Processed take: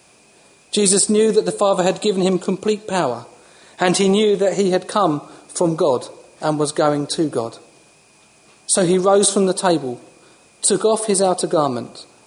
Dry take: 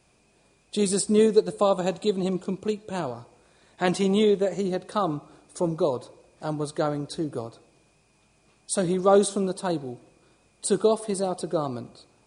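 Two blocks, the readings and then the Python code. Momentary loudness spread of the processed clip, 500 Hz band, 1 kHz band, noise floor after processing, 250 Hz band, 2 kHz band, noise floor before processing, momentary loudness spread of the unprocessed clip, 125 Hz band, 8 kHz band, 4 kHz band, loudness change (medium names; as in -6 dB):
12 LU, +7.0 dB, +9.0 dB, -52 dBFS, +7.0 dB, +10.0 dB, -64 dBFS, 15 LU, +6.5 dB, +13.5 dB, +11.0 dB, +8.0 dB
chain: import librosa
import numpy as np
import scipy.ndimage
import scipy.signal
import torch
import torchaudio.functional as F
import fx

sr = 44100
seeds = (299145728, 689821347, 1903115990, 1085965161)

p1 = fx.highpass(x, sr, hz=270.0, slope=6)
p2 = fx.high_shelf(p1, sr, hz=6600.0, db=4.5)
p3 = fx.over_compress(p2, sr, threshold_db=-26.0, ratio=-0.5)
p4 = p2 + F.gain(torch.from_numpy(p3), 1.0).numpy()
y = F.gain(torch.from_numpy(p4), 4.5).numpy()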